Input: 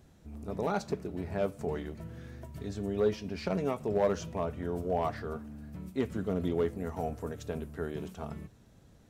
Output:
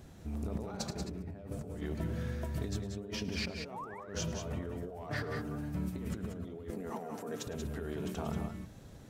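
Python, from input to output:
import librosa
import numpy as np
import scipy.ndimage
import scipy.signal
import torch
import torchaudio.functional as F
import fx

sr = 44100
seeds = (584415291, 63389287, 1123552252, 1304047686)

y = fx.low_shelf(x, sr, hz=300.0, db=9.5, at=(1.0, 1.81))
y = fx.spec_paint(y, sr, seeds[0], shape='rise', start_s=3.63, length_s=0.37, low_hz=470.0, high_hz=2400.0, level_db=-35.0)
y = fx.comb(y, sr, ms=6.8, depth=0.53, at=(5.1, 5.75))
y = fx.over_compress(y, sr, threshold_db=-41.0, ratio=-1.0)
y = fx.highpass(y, sr, hz=180.0, slope=24, at=(6.7, 7.47))
y = fx.echo_multitap(y, sr, ms=(107, 180, 190), db=(-18.0, -10.0, -8.5))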